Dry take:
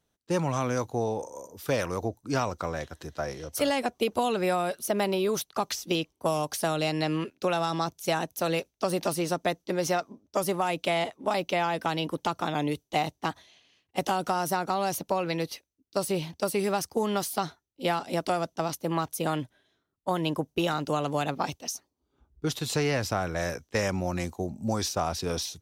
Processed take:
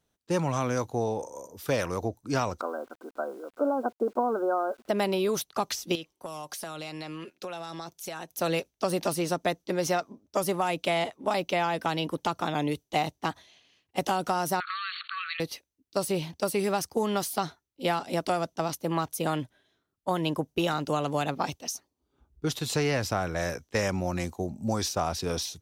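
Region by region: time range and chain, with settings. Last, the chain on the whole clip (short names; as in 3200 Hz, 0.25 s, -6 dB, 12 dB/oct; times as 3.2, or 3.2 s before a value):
2.61–4.89 brick-wall FIR band-pass 210–1600 Hz + requantised 10-bit, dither none
5.95–8.34 low shelf 260 Hz -9 dB + comb 5.6 ms, depth 31% + compressor 4:1, threshold -35 dBFS
14.6–15.4 self-modulated delay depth 0.084 ms + brick-wall FIR band-pass 1100–4500 Hz + fast leveller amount 70%
whole clip: dry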